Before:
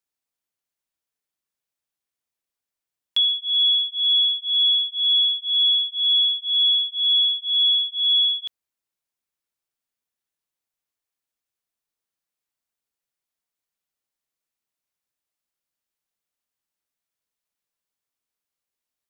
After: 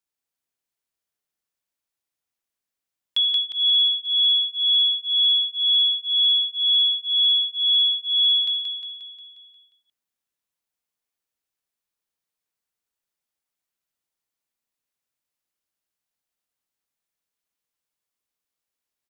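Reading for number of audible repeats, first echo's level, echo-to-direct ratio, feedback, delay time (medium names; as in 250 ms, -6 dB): 7, -4.0 dB, -2.5 dB, 56%, 178 ms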